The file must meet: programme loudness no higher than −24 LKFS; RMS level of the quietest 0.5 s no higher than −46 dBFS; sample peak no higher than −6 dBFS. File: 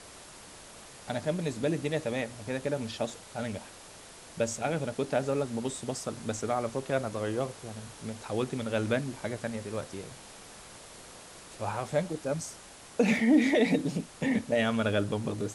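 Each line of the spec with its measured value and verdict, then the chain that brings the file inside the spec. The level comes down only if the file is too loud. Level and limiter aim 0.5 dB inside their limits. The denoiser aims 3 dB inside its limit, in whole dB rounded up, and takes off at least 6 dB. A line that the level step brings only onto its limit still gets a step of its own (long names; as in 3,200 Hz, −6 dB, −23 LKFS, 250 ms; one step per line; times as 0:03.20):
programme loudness −31.0 LKFS: in spec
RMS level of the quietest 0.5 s −50 dBFS: in spec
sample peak −13.5 dBFS: in spec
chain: no processing needed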